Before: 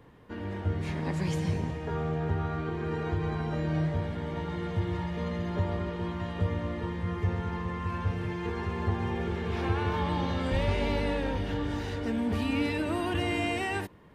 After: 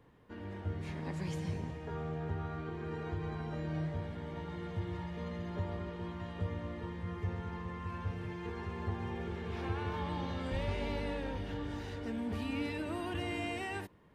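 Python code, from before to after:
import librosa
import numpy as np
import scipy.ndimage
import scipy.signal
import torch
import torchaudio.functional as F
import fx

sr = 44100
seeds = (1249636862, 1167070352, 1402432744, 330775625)

y = x * librosa.db_to_amplitude(-8.0)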